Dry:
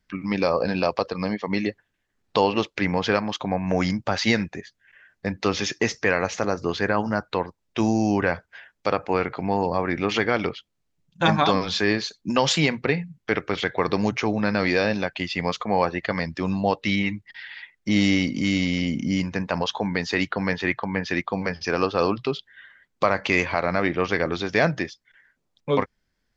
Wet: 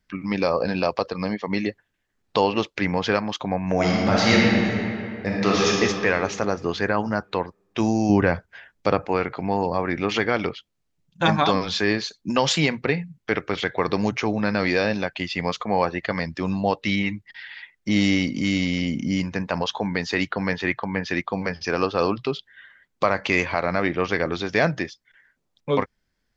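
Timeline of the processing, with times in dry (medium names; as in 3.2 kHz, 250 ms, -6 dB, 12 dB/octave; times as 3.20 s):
3.73–5.69 s: reverb throw, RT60 2.5 s, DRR -4.5 dB
8.09–9.08 s: bass shelf 380 Hz +7.5 dB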